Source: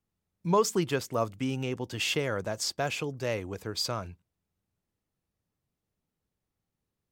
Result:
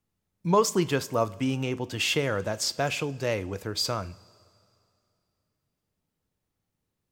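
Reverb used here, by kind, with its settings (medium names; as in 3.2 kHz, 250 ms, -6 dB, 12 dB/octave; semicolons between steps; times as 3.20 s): two-slope reverb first 0.33 s, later 2.6 s, from -18 dB, DRR 13 dB; trim +3 dB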